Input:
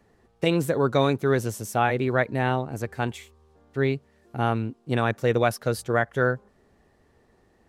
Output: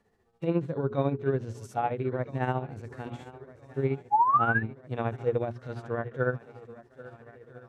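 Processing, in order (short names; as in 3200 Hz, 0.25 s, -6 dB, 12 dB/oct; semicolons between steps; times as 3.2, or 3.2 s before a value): treble ducked by the level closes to 2100 Hz, closed at -17.5 dBFS; notches 60/120/180/240/300/360/420 Hz; on a send: swung echo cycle 1.32 s, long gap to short 1.5:1, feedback 55%, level -18.5 dB; on the sum: painted sound rise, 4.11–4.63, 800–1800 Hz -16 dBFS; tremolo 14 Hz, depth 70%; harmonic-percussive split percussive -17 dB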